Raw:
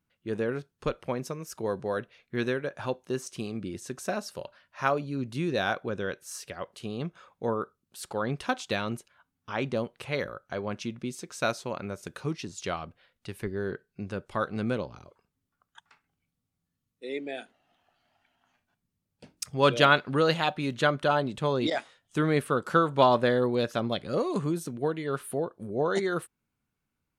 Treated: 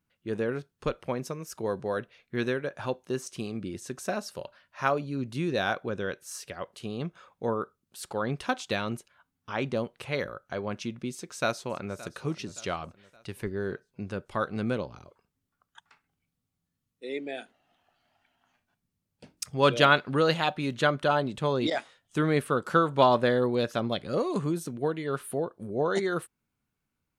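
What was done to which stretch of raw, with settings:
11.12–12.02 s: echo throw 570 ms, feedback 45%, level -17.5 dB

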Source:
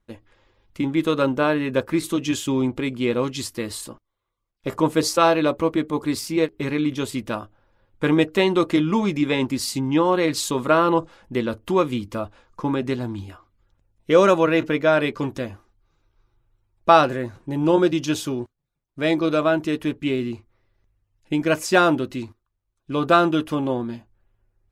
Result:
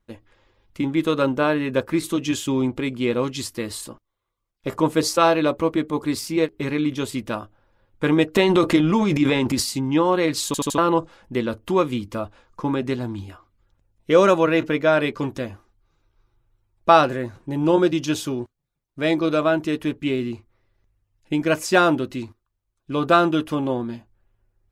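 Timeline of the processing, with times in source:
8.35–9.63 s: transient shaper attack +3 dB, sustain +10 dB
10.46 s: stutter in place 0.08 s, 4 plays

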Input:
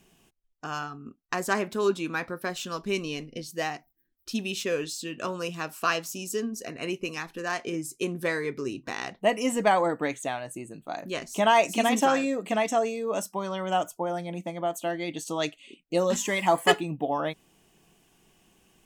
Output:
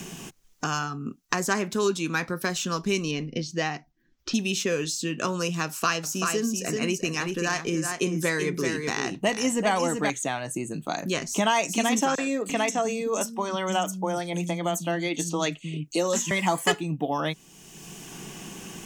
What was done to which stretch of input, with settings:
3.11–4.34 s: distance through air 160 m
5.65–10.10 s: delay 384 ms -6.5 dB
12.15–16.31 s: three bands offset in time highs, mids, lows 30/340 ms, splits 210/4700 Hz
whole clip: fifteen-band graphic EQ 160 Hz +5 dB, 630 Hz -4 dB, 6.3 kHz +8 dB; three bands compressed up and down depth 70%; trim +2 dB

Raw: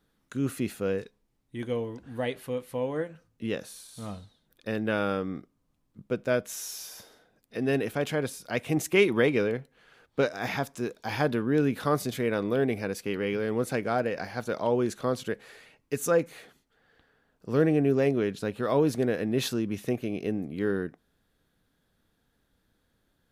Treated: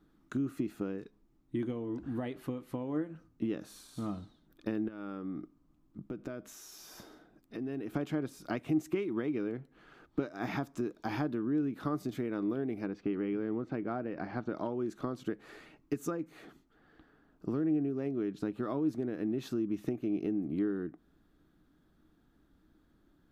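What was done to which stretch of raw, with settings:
4.88–7.95 s: compression 5:1, threshold -42 dBFS
12.86–14.55 s: distance through air 220 m
whole clip: tilt shelf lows +5.5 dB; compression 12:1, threshold -32 dBFS; graphic EQ with 31 bands 100 Hz -9 dB, 315 Hz +10 dB, 500 Hz -8 dB, 1.25 kHz +6 dB, 10 kHz -6 dB

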